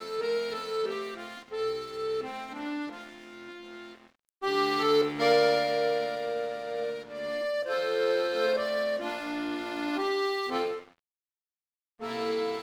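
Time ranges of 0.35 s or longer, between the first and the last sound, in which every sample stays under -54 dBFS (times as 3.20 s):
10.98–11.99 s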